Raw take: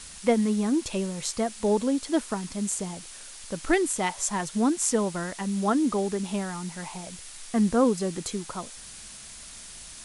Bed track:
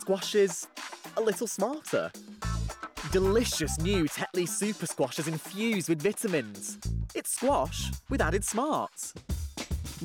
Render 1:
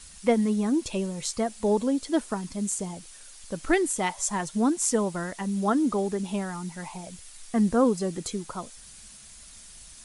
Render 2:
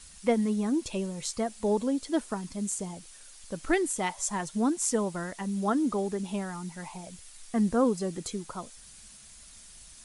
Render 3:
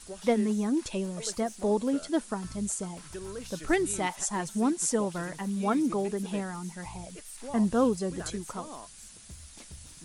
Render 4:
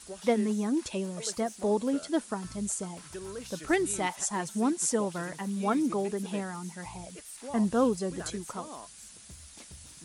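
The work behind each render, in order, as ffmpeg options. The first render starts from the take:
-af "afftdn=nr=7:nf=-44"
-af "volume=-3dB"
-filter_complex "[1:a]volume=-15dB[a];[0:a][a]amix=inputs=2:normalize=0"
-af "highpass=43,lowshelf=f=170:g=-3.5"

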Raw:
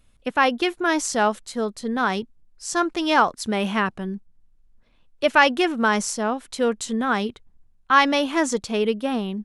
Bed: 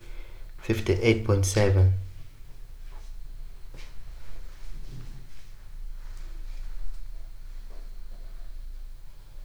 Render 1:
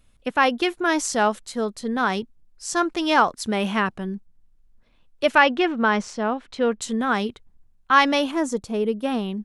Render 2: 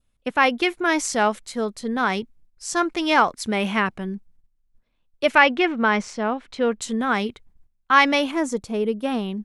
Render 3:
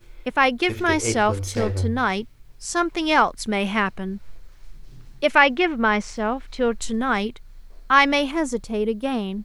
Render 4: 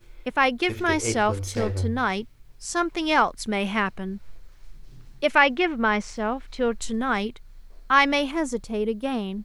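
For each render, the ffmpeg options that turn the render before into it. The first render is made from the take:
-filter_complex "[0:a]asettb=1/sr,asplit=3[a][b][c];[a]atrim=end=5.384[d];[b]atrim=start=5.38:end=6.82,asetpts=PTS-STARTPTS,afade=t=in:d=0.004:c=qsin,afade=t=out:st=1.436:d=0.004:c=qsin,lowpass=3.6k[e];[c]atrim=start=6.816[f];[d][e]acrossfade=d=0.004:c1=hsin:c2=qsin[g];[g][f]acrossfade=d=0.004:c1=qsin:c2=hsin,asettb=1/sr,asplit=3[h][i][j];[h]atrim=end=8.314[k];[i]atrim=start=8.31:end=9.03,asetpts=PTS-STARTPTS,afade=t=in:d=0.004:c=qsin,afade=t=out:st=0.716:d=0.004:c=qsin,equalizer=f=3.1k:t=o:w=3:g=-10.5[l];[j]atrim=start=9.026[m];[k][l]acrossfade=d=0.004:c1=hsin:c2=qsin[n];[n][m]acrossfade=d=0.004:c1=qsin:c2=hsin"
-af "agate=range=-11dB:threshold=-51dB:ratio=16:detection=peak,adynamicequalizer=threshold=0.00891:dfrequency=2200:dqfactor=4.5:tfrequency=2200:tqfactor=4.5:attack=5:release=100:ratio=0.375:range=3.5:mode=boostabove:tftype=bell"
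-filter_complex "[1:a]volume=-4.5dB[a];[0:a][a]amix=inputs=2:normalize=0"
-af "volume=-2.5dB"

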